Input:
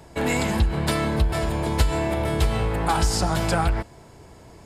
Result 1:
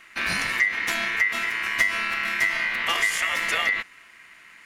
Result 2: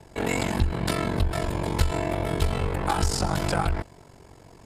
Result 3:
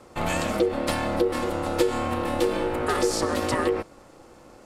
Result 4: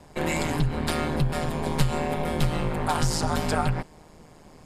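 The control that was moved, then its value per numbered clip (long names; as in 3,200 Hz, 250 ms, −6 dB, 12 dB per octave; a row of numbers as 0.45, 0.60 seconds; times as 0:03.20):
ring modulation, frequency: 2,000, 23, 420, 78 Hertz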